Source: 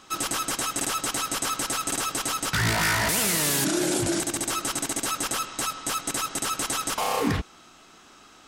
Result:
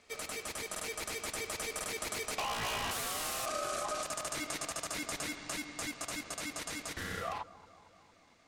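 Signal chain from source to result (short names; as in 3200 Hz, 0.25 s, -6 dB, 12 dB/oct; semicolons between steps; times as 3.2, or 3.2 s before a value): Doppler pass-by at 3.38, 21 m/s, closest 11 m; bell 710 Hz -2.5 dB; ring modulator 930 Hz; compressor 10:1, threshold -40 dBFS, peak gain reduction 16.5 dB; high shelf 7300 Hz -5 dB; on a send: analogue delay 0.227 s, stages 2048, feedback 65%, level -18 dB; on the sum: gain +8 dB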